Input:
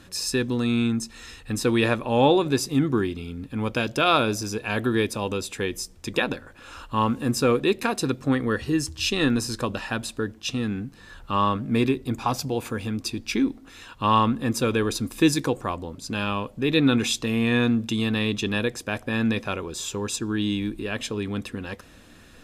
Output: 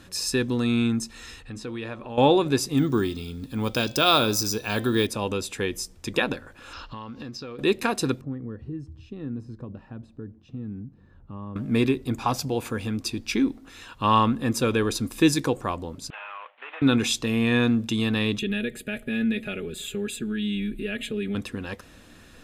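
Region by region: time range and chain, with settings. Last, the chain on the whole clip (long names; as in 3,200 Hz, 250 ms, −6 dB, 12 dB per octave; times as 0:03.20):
0:01.42–0:02.18: hum removal 71.98 Hz, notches 18 + downward compressor 2 to 1, threshold −40 dBFS + high-frequency loss of the air 61 metres
0:02.77–0:05.07: high shelf with overshoot 3,200 Hz +6.5 dB, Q 1.5 + hum removal 259 Hz, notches 23 + bad sample-rate conversion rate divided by 2×, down none, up hold
0:06.73–0:07.59: high shelf with overshoot 6,800 Hz −12 dB, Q 3 + downward compressor 20 to 1, threshold −33 dBFS
0:08.21–0:11.56: downward compressor 1.5 to 1, threshold −37 dBFS + resonant band-pass 120 Hz, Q 0.7
0:16.10–0:16.82: variable-slope delta modulation 16 kbit/s + high-pass filter 750 Hz 24 dB per octave + downward compressor 4 to 1, threshold −35 dBFS
0:18.39–0:21.35: downward compressor 2 to 1, threshold −27 dBFS + phaser with its sweep stopped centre 2,400 Hz, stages 4 + comb filter 4.8 ms, depth 83%
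whole clip: no processing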